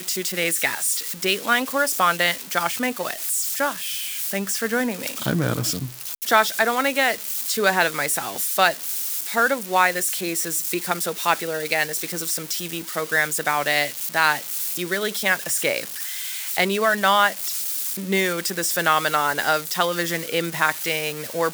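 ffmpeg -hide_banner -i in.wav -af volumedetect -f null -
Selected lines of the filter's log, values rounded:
mean_volume: -23.2 dB
max_volume: -3.4 dB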